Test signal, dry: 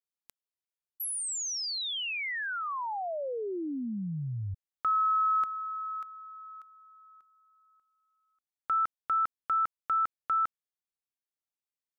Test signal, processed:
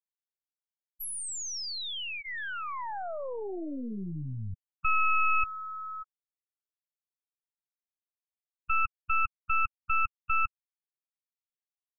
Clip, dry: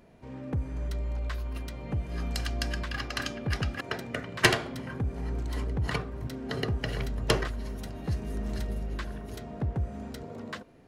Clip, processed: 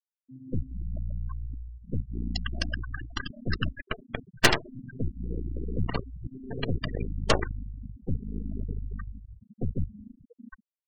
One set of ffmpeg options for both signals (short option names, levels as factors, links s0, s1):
-af "bandreject=f=2200:w=12,aeval=exprs='0.501*(cos(1*acos(clip(val(0)/0.501,-1,1)))-cos(1*PI/2))+0.1*(cos(6*acos(clip(val(0)/0.501,-1,1)))-cos(6*PI/2))+0.0158*(cos(7*acos(clip(val(0)/0.501,-1,1)))-cos(7*PI/2))+0.2*(cos(8*acos(clip(val(0)/0.501,-1,1)))-cos(8*PI/2))':c=same,afftfilt=real='re*gte(hypot(re,im),0.0631)':imag='im*gte(hypot(re,im),0.0631)':win_size=1024:overlap=0.75"